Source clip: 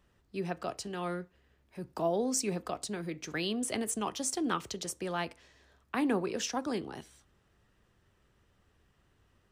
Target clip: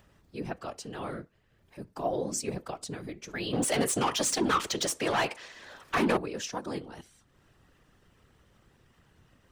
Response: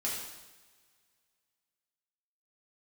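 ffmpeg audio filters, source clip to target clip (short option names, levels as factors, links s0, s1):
-filter_complex "[0:a]acompressor=mode=upward:threshold=0.00282:ratio=2.5,asettb=1/sr,asplit=3[s0][s1][s2];[s0]atrim=end=3.534[s3];[s1]atrim=start=3.53:end=6.17,asetpts=PTS-STARTPTS,afade=t=in:d=0.004:c=qsin,afade=t=out:st=2.636:d=0.004:c=qsin,asplit=2[s4][s5];[s5]highpass=f=720:p=1,volume=14.1,asoftclip=type=tanh:threshold=0.15[s6];[s4][s6]amix=inputs=2:normalize=0,lowpass=f=6300:p=1,volume=0.501[s7];[s2]atrim=start=6.166[s8];[s3][s7]acrossfade=d=0.004:c1=hsin:c2=qsin[s9];[s9][s8]acrossfade=d=0.004:c1=qsin:c2=hsin,afftfilt=real='hypot(re,im)*cos(2*PI*random(0))':imag='hypot(re,im)*sin(2*PI*random(1))':win_size=512:overlap=0.75,volume=1.68"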